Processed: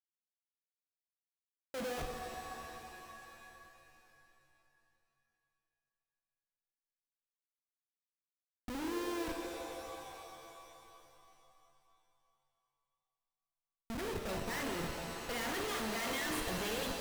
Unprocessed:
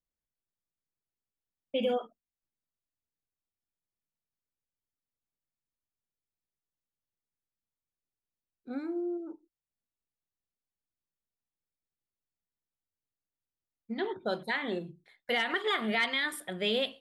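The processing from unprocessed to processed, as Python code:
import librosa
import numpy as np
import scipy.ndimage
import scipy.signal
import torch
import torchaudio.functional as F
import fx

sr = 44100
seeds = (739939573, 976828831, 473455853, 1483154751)

y = fx.schmitt(x, sr, flips_db=-41.0)
y = fx.rev_shimmer(y, sr, seeds[0], rt60_s=3.0, semitones=7, shimmer_db=-2, drr_db=3.5)
y = y * 10.0 ** (-1.0 / 20.0)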